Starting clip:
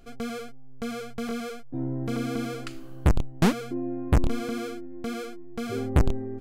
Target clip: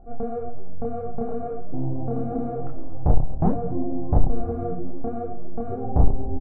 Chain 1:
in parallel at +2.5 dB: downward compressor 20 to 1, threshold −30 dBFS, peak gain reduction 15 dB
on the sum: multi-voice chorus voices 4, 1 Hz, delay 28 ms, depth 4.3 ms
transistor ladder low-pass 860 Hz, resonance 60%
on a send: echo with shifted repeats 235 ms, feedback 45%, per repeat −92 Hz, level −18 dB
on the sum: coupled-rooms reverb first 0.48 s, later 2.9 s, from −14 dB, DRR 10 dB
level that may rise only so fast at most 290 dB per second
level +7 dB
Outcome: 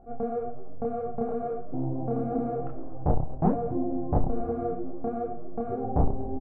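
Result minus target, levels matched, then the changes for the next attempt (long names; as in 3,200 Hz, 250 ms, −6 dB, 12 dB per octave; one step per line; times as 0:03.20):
125 Hz band −2.5 dB
add after transistor ladder low-pass: low-shelf EQ 97 Hz +10.5 dB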